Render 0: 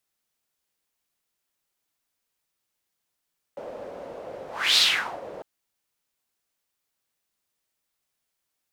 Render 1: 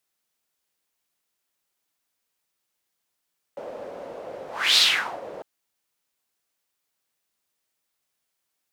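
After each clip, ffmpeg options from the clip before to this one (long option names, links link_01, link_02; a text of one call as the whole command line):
ffmpeg -i in.wav -af "lowshelf=frequency=120:gain=-6.5,volume=1.5dB" out.wav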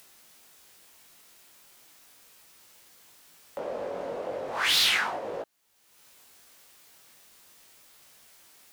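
ffmpeg -i in.wav -filter_complex "[0:a]asplit=2[link_01][link_02];[link_02]acompressor=mode=upward:threshold=-28dB:ratio=2.5,volume=-1.5dB[link_03];[link_01][link_03]amix=inputs=2:normalize=0,asoftclip=type=tanh:threshold=-15.5dB,flanger=delay=18:depth=3.6:speed=0.36,volume=-1dB" out.wav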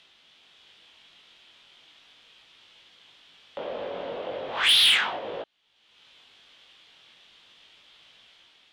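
ffmpeg -i in.wav -af "dynaudnorm=framelen=100:gausssize=9:maxgain=3dB,lowpass=frequency=3300:width_type=q:width=4.5,asoftclip=type=tanh:threshold=-11.5dB,volume=-3dB" out.wav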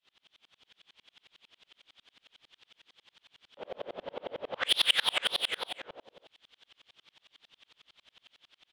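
ffmpeg -i in.wav -af "aecho=1:1:233|562|828:0.668|0.531|0.2,aeval=exprs='val(0)*pow(10,-36*if(lt(mod(-11*n/s,1),2*abs(-11)/1000),1-mod(-11*n/s,1)/(2*abs(-11)/1000),(mod(-11*n/s,1)-2*abs(-11)/1000)/(1-2*abs(-11)/1000))/20)':channel_layout=same" out.wav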